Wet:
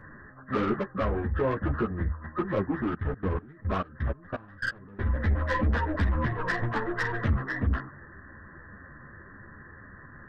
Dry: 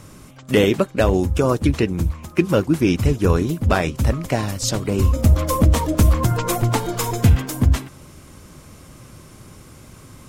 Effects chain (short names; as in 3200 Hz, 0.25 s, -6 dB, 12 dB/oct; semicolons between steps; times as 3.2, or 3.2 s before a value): nonlinear frequency compression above 1000 Hz 4:1; soft clip -15.5 dBFS, distortion -10 dB; 2.81–5.06 level quantiser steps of 21 dB; ensemble effect; gain -3.5 dB